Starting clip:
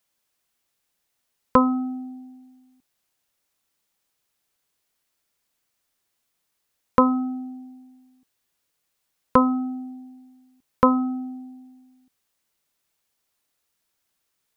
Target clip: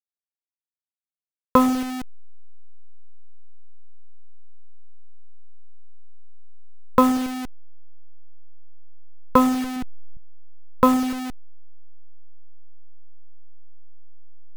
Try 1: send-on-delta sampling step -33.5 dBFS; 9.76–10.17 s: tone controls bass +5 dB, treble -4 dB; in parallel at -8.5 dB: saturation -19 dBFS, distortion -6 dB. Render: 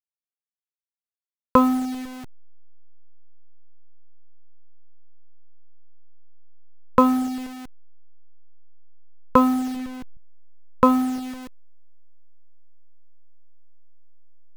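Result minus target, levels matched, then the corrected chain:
send-on-delta sampling: distortion -8 dB
send-on-delta sampling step -26 dBFS; 9.76–10.17 s: tone controls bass +5 dB, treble -4 dB; in parallel at -8.5 dB: saturation -19 dBFS, distortion -7 dB

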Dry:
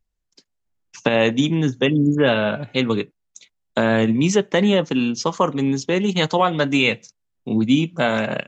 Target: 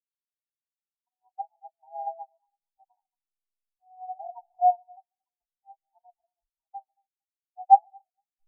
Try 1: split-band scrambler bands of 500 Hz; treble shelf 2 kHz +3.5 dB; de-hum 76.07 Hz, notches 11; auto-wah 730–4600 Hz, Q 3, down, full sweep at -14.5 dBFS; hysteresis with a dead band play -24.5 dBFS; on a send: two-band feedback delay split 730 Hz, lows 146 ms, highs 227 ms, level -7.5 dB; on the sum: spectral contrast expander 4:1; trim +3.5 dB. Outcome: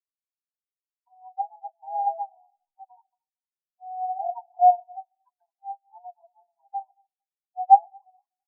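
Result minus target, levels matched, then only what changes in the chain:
hysteresis with a dead band: distortion -9 dB
change: hysteresis with a dead band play -15 dBFS

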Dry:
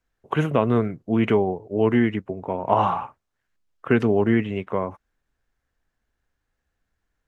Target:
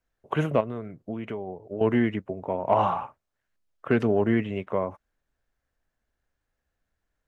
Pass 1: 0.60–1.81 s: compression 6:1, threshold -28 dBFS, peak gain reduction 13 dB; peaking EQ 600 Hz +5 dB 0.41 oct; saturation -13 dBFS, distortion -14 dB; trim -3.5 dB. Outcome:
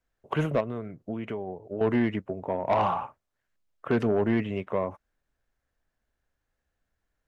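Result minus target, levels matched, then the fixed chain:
saturation: distortion +14 dB
0.60–1.81 s: compression 6:1, threshold -28 dBFS, peak gain reduction 13 dB; peaking EQ 600 Hz +5 dB 0.41 oct; saturation -3 dBFS, distortion -27 dB; trim -3.5 dB

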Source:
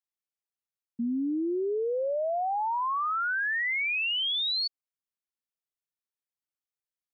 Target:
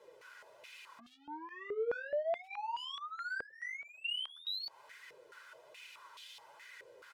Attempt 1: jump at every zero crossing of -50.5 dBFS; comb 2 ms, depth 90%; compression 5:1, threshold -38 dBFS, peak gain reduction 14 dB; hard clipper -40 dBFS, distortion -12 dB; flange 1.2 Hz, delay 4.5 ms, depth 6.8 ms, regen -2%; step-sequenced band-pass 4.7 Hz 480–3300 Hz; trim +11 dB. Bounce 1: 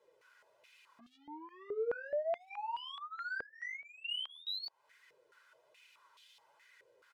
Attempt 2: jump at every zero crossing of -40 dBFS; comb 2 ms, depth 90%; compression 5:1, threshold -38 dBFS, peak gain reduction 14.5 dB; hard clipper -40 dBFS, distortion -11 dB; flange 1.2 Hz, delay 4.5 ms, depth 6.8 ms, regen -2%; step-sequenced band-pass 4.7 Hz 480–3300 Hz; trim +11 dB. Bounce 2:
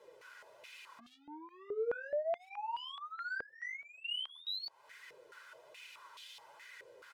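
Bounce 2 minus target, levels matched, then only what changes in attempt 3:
compression: peak gain reduction +6.5 dB
change: compression 5:1, threshold -30 dBFS, peak gain reduction 8 dB

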